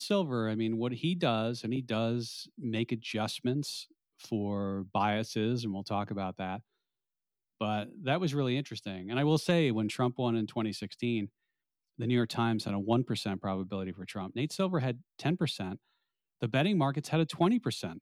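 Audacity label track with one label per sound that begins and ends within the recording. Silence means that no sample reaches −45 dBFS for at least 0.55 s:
7.610000	11.270000	sound
11.990000	15.760000	sound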